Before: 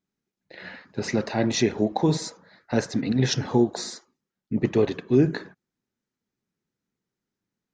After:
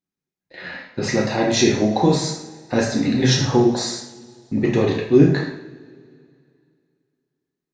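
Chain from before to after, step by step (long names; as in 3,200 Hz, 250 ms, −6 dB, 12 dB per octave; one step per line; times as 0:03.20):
noise gate −46 dBFS, range −11 dB
coupled-rooms reverb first 0.63 s, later 2.5 s, from −21 dB, DRR −2 dB
level +3 dB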